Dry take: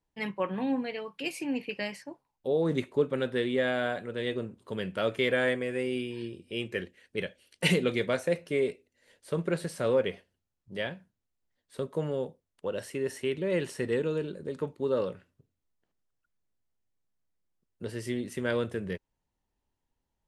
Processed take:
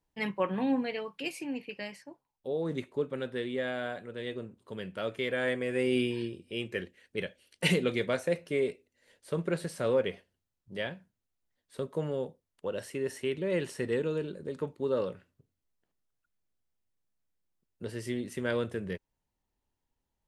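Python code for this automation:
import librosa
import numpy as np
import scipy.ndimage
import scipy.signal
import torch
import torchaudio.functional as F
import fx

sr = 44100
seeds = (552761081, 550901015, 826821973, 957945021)

y = fx.gain(x, sr, db=fx.line((1.0, 1.0), (1.61, -5.5), (5.32, -5.5), (6.05, 6.0), (6.43, -1.5)))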